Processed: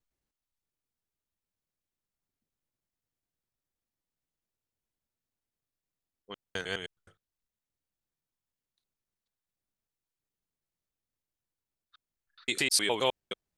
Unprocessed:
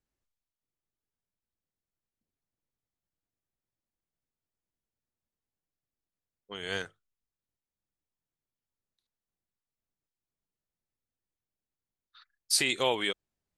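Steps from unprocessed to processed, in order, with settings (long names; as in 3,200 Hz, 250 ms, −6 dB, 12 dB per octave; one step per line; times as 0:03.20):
slices reordered back to front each 104 ms, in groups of 3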